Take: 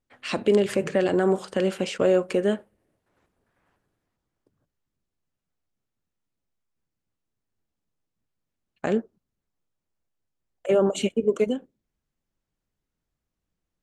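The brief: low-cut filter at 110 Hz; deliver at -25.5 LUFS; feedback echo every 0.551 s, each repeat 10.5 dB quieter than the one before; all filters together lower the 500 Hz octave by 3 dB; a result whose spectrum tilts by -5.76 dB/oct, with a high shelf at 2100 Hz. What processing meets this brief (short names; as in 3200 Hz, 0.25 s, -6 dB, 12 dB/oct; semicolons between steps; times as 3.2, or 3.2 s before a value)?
HPF 110 Hz; bell 500 Hz -3.5 dB; high shelf 2100 Hz -6 dB; feedback echo 0.551 s, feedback 30%, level -10.5 dB; gain +2 dB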